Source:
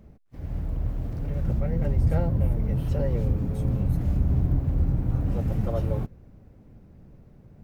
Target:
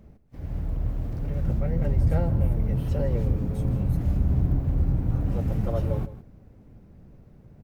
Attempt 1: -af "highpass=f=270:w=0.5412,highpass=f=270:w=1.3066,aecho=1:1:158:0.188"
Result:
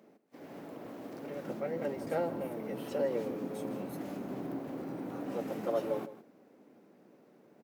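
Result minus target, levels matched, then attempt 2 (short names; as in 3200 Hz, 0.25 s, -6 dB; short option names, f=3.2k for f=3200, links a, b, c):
250 Hz band +4.0 dB
-af "aecho=1:1:158:0.188"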